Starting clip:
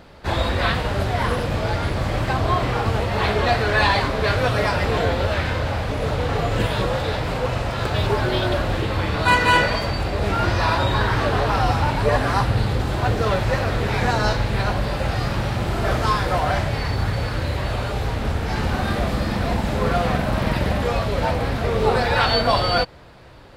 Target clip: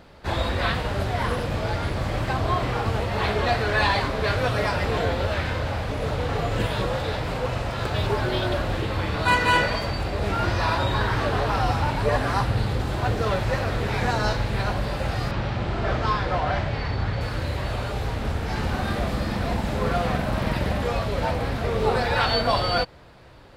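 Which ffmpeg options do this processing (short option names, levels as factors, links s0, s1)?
-filter_complex "[0:a]asettb=1/sr,asplit=3[s0][s1][s2];[s0]atrim=end=15.314[s3];[s1]atrim=start=15.31:end=17.21,asetpts=PTS-STARTPTS,afade=t=in:d=0.004:c=qsin,afade=t=out:st=1.896:d=0.004:c=qsin,lowpass=4600[s4];[s2]atrim=start=17.206[s5];[s3][s4]acrossfade=d=0.004:c1=hsin:c2=qsin[s6];[s6][s5]acrossfade=d=0.004:c1=qsin:c2=hsin,volume=0.668"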